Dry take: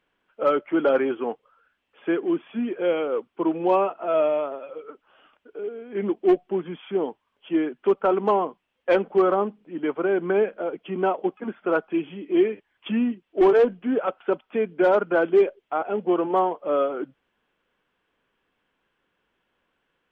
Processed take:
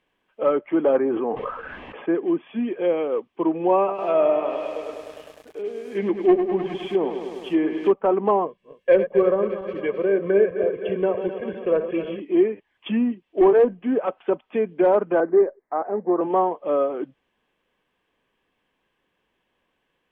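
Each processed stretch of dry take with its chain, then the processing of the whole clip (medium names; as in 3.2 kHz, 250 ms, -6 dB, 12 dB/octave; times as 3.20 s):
0.97–2.15 s: low-pass 1.6 kHz + decay stretcher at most 22 dB/s
3.78–7.92 s: treble shelf 2.5 kHz +8.5 dB + bit-crushed delay 102 ms, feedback 80%, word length 8-bit, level -8 dB
8.46–12.20 s: backward echo that repeats 128 ms, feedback 77%, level -10 dB + high-order bell 940 Hz -8.5 dB 1.2 oct + comb 1.8 ms, depth 61%
15.20–16.21 s: steep low-pass 2 kHz 72 dB/octave + peaking EQ 89 Hz -8.5 dB 1.7 oct
whole clip: low-pass that closes with the level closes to 1.8 kHz, closed at -18.5 dBFS; band-stop 1.4 kHz, Q 5.3; trim +1.5 dB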